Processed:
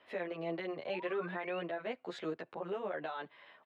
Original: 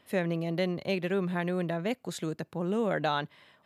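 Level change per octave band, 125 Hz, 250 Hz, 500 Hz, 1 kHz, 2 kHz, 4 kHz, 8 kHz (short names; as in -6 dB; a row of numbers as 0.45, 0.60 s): -17.5 dB, -12.0 dB, -6.5 dB, -7.0 dB, -6.5 dB, -10.0 dB, under -20 dB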